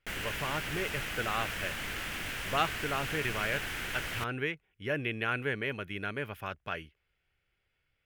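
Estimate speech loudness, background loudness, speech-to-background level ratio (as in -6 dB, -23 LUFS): -35.5 LUFS, -36.0 LUFS, 0.5 dB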